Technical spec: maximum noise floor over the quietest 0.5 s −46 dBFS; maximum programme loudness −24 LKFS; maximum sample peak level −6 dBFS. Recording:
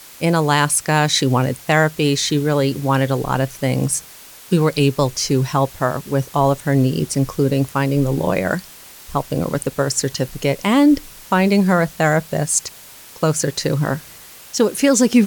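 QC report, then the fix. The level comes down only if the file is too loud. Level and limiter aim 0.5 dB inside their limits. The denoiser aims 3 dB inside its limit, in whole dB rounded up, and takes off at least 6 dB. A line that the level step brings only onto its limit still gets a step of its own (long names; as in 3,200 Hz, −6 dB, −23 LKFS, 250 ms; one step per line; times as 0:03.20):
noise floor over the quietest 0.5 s −41 dBFS: out of spec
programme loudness −18.5 LKFS: out of spec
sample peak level −3.5 dBFS: out of spec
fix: level −6 dB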